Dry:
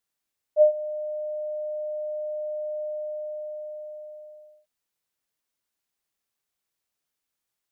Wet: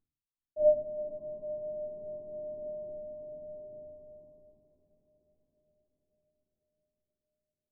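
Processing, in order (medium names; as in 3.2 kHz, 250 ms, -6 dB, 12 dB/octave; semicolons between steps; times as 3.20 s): CVSD coder 32 kbps; Gaussian low-pass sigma 17 samples; echo that smears into a reverb 451 ms, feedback 65%, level -12.5 dB; simulated room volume 320 m³, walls furnished, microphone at 3.3 m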